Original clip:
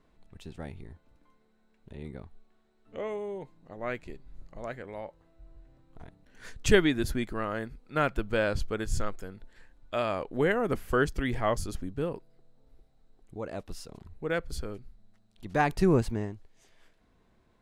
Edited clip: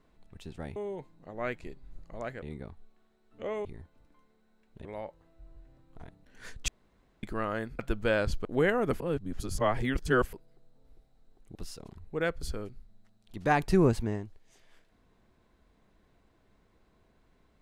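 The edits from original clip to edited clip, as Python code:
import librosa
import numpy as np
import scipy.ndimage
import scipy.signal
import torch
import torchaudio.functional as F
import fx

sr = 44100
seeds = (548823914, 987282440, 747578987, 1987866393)

y = fx.edit(x, sr, fx.swap(start_s=0.76, length_s=1.2, other_s=3.19, other_length_s=1.66),
    fx.room_tone_fill(start_s=6.68, length_s=0.55),
    fx.cut(start_s=7.79, length_s=0.28),
    fx.cut(start_s=8.73, length_s=1.54),
    fx.reverse_span(start_s=10.82, length_s=1.33),
    fx.cut(start_s=13.37, length_s=0.27), tone=tone)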